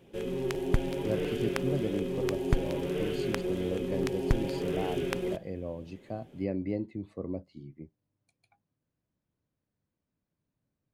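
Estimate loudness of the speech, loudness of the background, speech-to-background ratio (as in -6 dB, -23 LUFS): -37.0 LUFS, -32.5 LUFS, -4.5 dB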